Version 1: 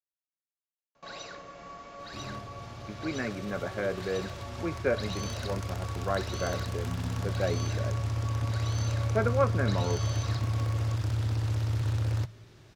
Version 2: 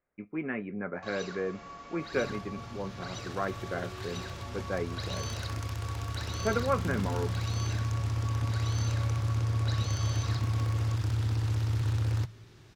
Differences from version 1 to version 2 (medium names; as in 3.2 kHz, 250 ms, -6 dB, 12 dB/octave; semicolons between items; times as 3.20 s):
speech: entry -2.70 s; master: add peaking EQ 600 Hz -6 dB 0.39 oct